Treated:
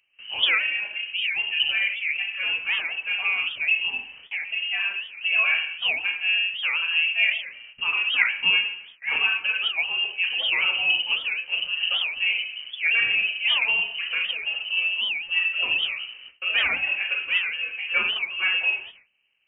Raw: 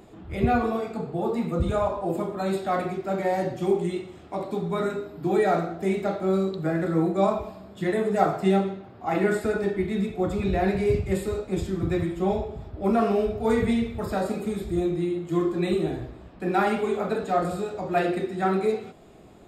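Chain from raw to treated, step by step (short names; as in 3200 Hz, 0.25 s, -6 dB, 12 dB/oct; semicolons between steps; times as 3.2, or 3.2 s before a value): gate with hold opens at -35 dBFS; inverted band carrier 3000 Hz; record warp 78 rpm, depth 250 cents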